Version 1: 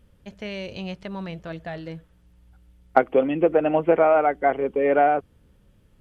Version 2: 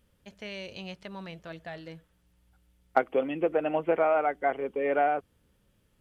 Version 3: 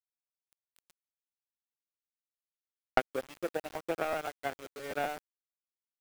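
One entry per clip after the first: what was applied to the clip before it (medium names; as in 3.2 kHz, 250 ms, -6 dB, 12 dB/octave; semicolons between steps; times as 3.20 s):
tilt EQ +1.5 dB/octave; trim -6 dB
power-law waveshaper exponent 2; word length cut 8-bit, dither none; crackling interface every 0.13 s, samples 512, repeat, from 0.48 s; trim +1.5 dB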